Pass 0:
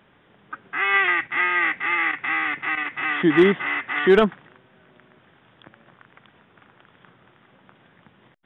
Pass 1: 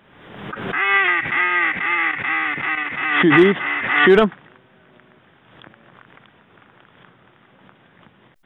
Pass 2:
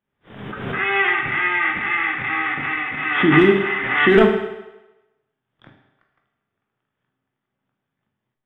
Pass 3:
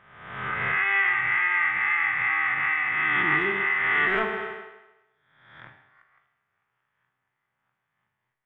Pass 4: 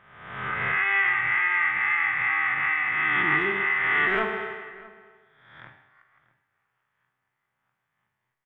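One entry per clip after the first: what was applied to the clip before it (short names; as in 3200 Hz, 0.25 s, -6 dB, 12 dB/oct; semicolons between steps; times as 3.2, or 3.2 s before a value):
backwards sustainer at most 52 dB/s; gain +2.5 dB
gate -42 dBFS, range -28 dB; low shelf 150 Hz +8 dB; on a send at -1 dB: reverb RT60 1.0 s, pre-delay 15 ms; on the sum: gain -4 dB
spectral swells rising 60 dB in 0.92 s; ten-band EQ 125 Hz +3 dB, 250 Hz -8 dB, 1000 Hz +8 dB, 2000 Hz +11 dB; compressor 2.5:1, threshold -17 dBFS, peak gain reduction 11.5 dB; gain -8 dB
outdoor echo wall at 110 m, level -20 dB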